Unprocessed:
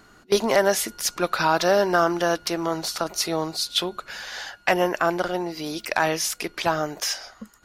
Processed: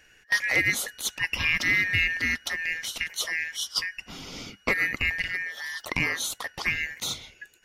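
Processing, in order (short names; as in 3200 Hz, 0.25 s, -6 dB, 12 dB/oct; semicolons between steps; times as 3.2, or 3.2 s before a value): four-band scrambler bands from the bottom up 2143; gain -4.5 dB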